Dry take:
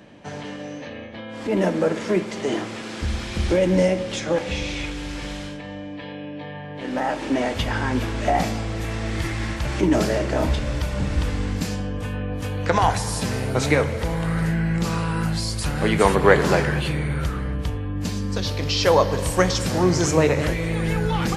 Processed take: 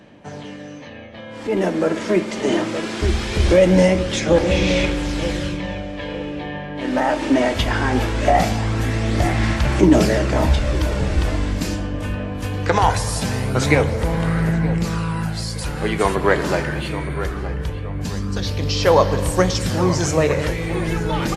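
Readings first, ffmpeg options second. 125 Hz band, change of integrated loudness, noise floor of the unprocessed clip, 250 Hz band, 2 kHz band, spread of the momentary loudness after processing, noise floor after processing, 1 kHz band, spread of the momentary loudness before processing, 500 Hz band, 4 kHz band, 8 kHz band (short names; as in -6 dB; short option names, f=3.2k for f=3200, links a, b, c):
+3.5 dB, +3.0 dB, -35 dBFS, +3.5 dB, +2.5 dB, 12 LU, -34 dBFS, +3.0 dB, 15 LU, +3.0 dB, +2.5 dB, +2.0 dB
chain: -filter_complex "[0:a]asplit=2[a][b];[b]adelay=920,lowpass=f=2.3k:p=1,volume=-11.5dB,asplit=2[c][d];[d]adelay=920,lowpass=f=2.3k:p=1,volume=0.41,asplit=2[e][f];[f]adelay=920,lowpass=f=2.3k:p=1,volume=0.41,asplit=2[g][h];[h]adelay=920,lowpass=f=2.3k:p=1,volume=0.41[i];[c][e][g][i]amix=inputs=4:normalize=0[j];[a][j]amix=inputs=2:normalize=0,dynaudnorm=f=430:g=9:m=11.5dB,aphaser=in_gain=1:out_gain=1:delay=3.3:decay=0.28:speed=0.21:type=sinusoidal,volume=-2dB"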